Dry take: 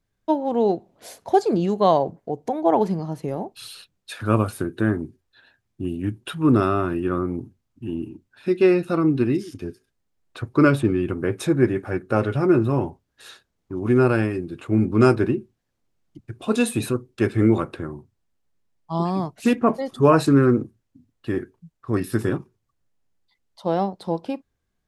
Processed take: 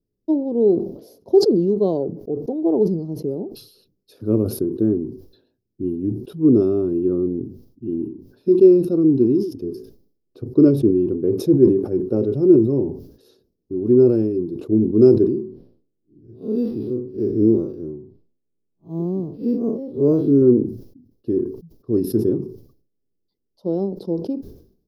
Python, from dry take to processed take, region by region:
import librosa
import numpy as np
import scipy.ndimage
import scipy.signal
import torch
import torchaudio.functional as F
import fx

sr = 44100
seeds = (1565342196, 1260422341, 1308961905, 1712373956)

y = fx.chain(x, sr, fx.spec_blur(span_ms=105.0),
    fx.resample_linear(factor=6), at=(15.29, 20.42))
y = fx.curve_eq(y, sr, hz=(100.0, 410.0, 730.0, 1900.0, 3600.0, 5200.0, 8000.0, 12000.0), db=(0, 11, -10, -27, -14, -3, -22, -1))
y = fx.sustainer(y, sr, db_per_s=94.0)
y = F.gain(torch.from_numpy(y), -4.5).numpy()